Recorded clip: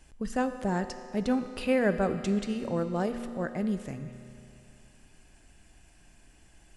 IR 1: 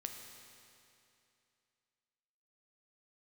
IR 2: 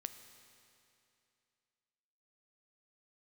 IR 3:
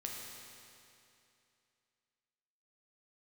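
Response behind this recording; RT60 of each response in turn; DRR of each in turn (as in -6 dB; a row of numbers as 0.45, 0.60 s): 2; 2.7, 2.7, 2.7 s; 3.0, 9.0, -1.5 dB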